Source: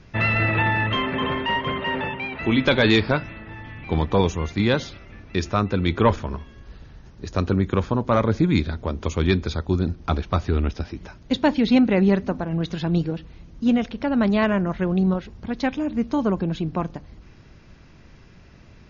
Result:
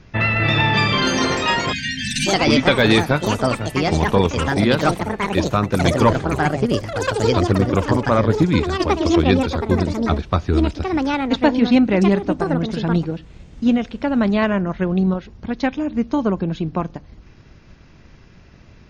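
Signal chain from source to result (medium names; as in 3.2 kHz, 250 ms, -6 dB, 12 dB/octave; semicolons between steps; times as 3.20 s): ever faster or slower copies 328 ms, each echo +5 st, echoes 3; spectral selection erased 1.72–2.27 s, 270–1500 Hz; transient shaper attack +2 dB, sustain -2 dB; trim +2 dB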